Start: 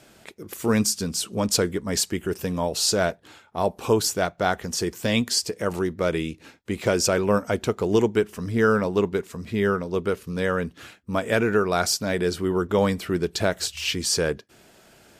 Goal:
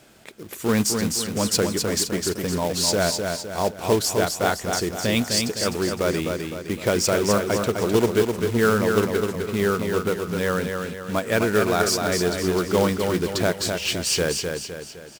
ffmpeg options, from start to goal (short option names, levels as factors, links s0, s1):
-filter_complex "[0:a]acrusher=bits=3:mode=log:mix=0:aa=0.000001,asplit=2[s0][s1];[s1]aecho=0:1:256|512|768|1024|1280|1536:0.562|0.259|0.119|0.0547|0.0252|0.0116[s2];[s0][s2]amix=inputs=2:normalize=0"